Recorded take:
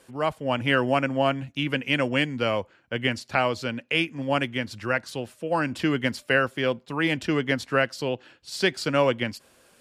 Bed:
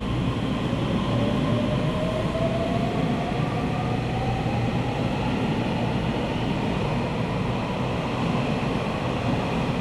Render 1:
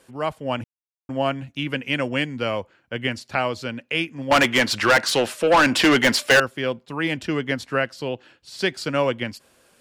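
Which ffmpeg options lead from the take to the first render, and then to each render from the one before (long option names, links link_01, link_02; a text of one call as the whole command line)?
ffmpeg -i in.wav -filter_complex "[0:a]asettb=1/sr,asplit=3[link_01][link_02][link_03];[link_01]atrim=end=4.314[link_04];[link_02]atrim=start=4.31:end=6.4,asetpts=PTS-STARTPTS,afade=type=in:duration=0.004:curve=qsin,afade=type=out:start_time=2.086:duration=0.004:curve=qsin,asplit=2[link_05][link_06];[link_06]highpass=frequency=720:poles=1,volume=26dB,asoftclip=type=tanh:threshold=-7dB[link_07];[link_05][link_07]amix=inputs=2:normalize=0,lowpass=frequency=7100:poles=1,volume=-6dB[link_08];[link_03]atrim=start=6.396[link_09];[link_04][link_08]acrossfade=duration=0.004:curve1=hsin:curve2=qsin[link_10];[link_10][link_09]acrossfade=duration=0.004:curve1=qsin:curve2=hsin,asettb=1/sr,asplit=3[link_11][link_12][link_13];[link_11]atrim=end=7.744[link_14];[link_12]atrim=start=7.74:end=8.59,asetpts=PTS-STARTPTS,afade=type=in:duration=0.004:curve=qsin,afade=type=out:start_time=0.846:duration=0.004:curve=qsin,acrossover=split=3600[link_15][link_16];[link_16]acompressor=threshold=-40dB:ratio=4:attack=1:release=60[link_17];[link_15][link_17]amix=inputs=2:normalize=0[link_18];[link_13]atrim=start=8.586[link_19];[link_14][link_18]acrossfade=duration=0.004:curve1=hsin:curve2=qsin[link_20];[link_20][link_19]acrossfade=duration=0.004:curve1=qsin:curve2=hsin,asplit=3[link_21][link_22][link_23];[link_21]atrim=end=0.64,asetpts=PTS-STARTPTS,afade=type=out:start_time=0.636:duration=0.004:curve=hsin[link_24];[link_22]atrim=start=0.64:end=1.09,asetpts=PTS-STARTPTS,volume=0[link_25];[link_23]atrim=start=1.09,asetpts=PTS-STARTPTS,afade=type=in:duration=0.004:curve=hsin[link_26];[link_24][link_25][link_26]concat=n=3:v=0:a=1" out.wav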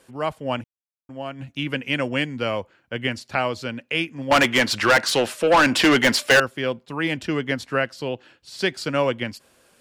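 ffmpeg -i in.wav -filter_complex "[0:a]asplit=3[link_01][link_02][link_03];[link_01]atrim=end=0.8,asetpts=PTS-STARTPTS,afade=type=out:start_time=0.6:duration=0.2:curve=exp:silence=0.334965[link_04];[link_02]atrim=start=0.8:end=1.21,asetpts=PTS-STARTPTS,volume=-9.5dB[link_05];[link_03]atrim=start=1.21,asetpts=PTS-STARTPTS,afade=type=in:duration=0.2:curve=exp:silence=0.334965[link_06];[link_04][link_05][link_06]concat=n=3:v=0:a=1" out.wav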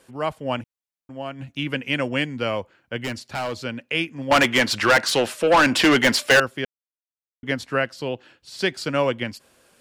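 ffmpeg -i in.wav -filter_complex "[0:a]asettb=1/sr,asplit=3[link_01][link_02][link_03];[link_01]atrim=end=3.004[link_04];[link_02]atrim=start=3:end=3.6,asetpts=PTS-STARTPTS,afade=type=in:duration=0.004:curve=qsin,afade=type=out:start_time=0.596:duration=0.004:curve=qsin,volume=23dB,asoftclip=hard,volume=-23dB[link_05];[link_03]atrim=start=3.596[link_06];[link_04][link_05]acrossfade=duration=0.004:curve1=hsin:curve2=qsin[link_07];[link_07][link_06]acrossfade=duration=0.004:curve1=qsin:curve2=hsin,asplit=3[link_08][link_09][link_10];[link_08]atrim=end=6.65,asetpts=PTS-STARTPTS,afade=type=out:start_time=6.646:duration=0.004:curve=hsin[link_11];[link_09]atrim=start=6.65:end=7.43,asetpts=PTS-STARTPTS,volume=0[link_12];[link_10]atrim=start=7.43,asetpts=PTS-STARTPTS,afade=type=in:duration=0.004:curve=hsin[link_13];[link_11][link_12][link_13]concat=n=3:v=0:a=1" out.wav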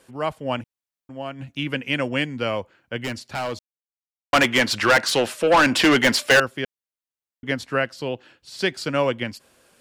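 ffmpeg -i in.wav -filter_complex "[0:a]asplit=3[link_01][link_02][link_03];[link_01]atrim=end=3.59,asetpts=PTS-STARTPTS,afade=type=out:start_time=3.586:duration=0.004:curve=hsin[link_04];[link_02]atrim=start=3.59:end=4.33,asetpts=PTS-STARTPTS,volume=0[link_05];[link_03]atrim=start=4.33,asetpts=PTS-STARTPTS,afade=type=in:duration=0.004:curve=hsin[link_06];[link_04][link_05][link_06]concat=n=3:v=0:a=1" out.wav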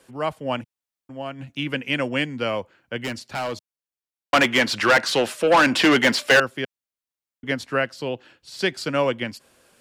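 ffmpeg -i in.wav -filter_complex "[0:a]acrossover=split=110|5300[link_01][link_02][link_03];[link_01]acompressor=threshold=-51dB:ratio=6[link_04];[link_03]alimiter=level_in=1.5dB:limit=-24dB:level=0:latency=1:release=96,volume=-1.5dB[link_05];[link_04][link_02][link_05]amix=inputs=3:normalize=0" out.wav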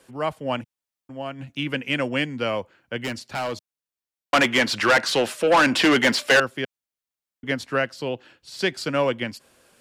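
ffmpeg -i in.wav -af "asoftclip=type=tanh:threshold=-8dB" out.wav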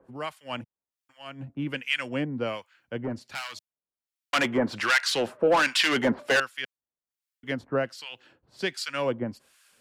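ffmpeg -i in.wav -filter_complex "[0:a]acrossover=split=1200[link_01][link_02];[link_01]aeval=exprs='val(0)*(1-1/2+1/2*cos(2*PI*1.3*n/s))':channel_layout=same[link_03];[link_02]aeval=exprs='val(0)*(1-1/2-1/2*cos(2*PI*1.3*n/s))':channel_layout=same[link_04];[link_03][link_04]amix=inputs=2:normalize=0" out.wav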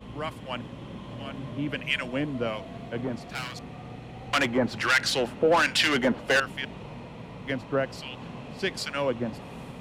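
ffmpeg -i in.wav -i bed.wav -filter_complex "[1:a]volume=-16dB[link_01];[0:a][link_01]amix=inputs=2:normalize=0" out.wav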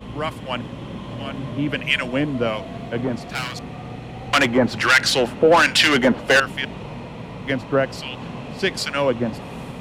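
ffmpeg -i in.wav -af "volume=7.5dB" out.wav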